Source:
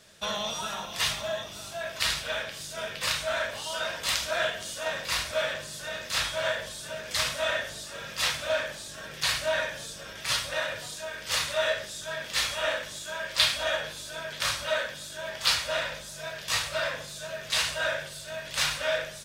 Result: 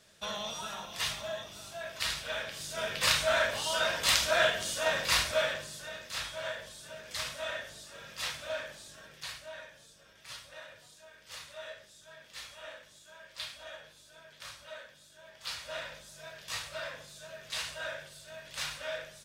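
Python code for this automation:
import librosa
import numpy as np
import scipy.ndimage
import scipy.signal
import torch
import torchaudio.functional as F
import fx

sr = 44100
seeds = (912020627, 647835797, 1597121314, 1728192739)

y = fx.gain(x, sr, db=fx.line((2.17, -6.0), (3.05, 2.0), (5.18, 2.0), (6.08, -9.0), (8.9, -9.0), (9.48, -18.0), (15.34, -18.0), (15.76, -10.0)))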